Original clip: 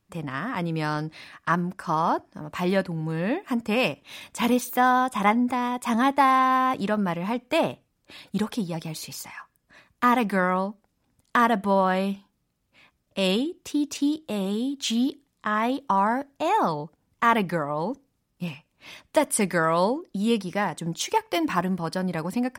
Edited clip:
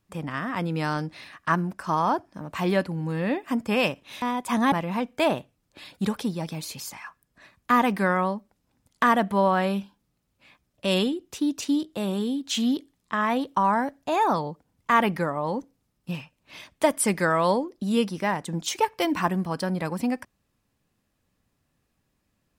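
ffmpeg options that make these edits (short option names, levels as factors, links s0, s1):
-filter_complex "[0:a]asplit=3[s0][s1][s2];[s0]atrim=end=4.222[s3];[s1]atrim=start=5.588:end=6.092[s4];[s2]atrim=start=7.048[s5];[s3][s4]acrossfade=d=0.004:c1=hsin:c2=hsin[s6];[s6][s5]acrossfade=d=0.004:c1=hsin:c2=hsin"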